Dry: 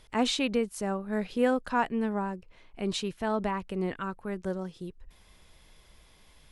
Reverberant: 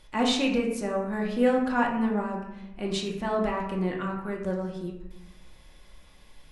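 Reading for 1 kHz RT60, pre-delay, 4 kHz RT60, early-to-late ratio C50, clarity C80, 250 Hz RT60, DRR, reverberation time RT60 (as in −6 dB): 0.90 s, 3 ms, 0.55 s, 5.0 dB, 8.0 dB, 1.3 s, −1.5 dB, 0.95 s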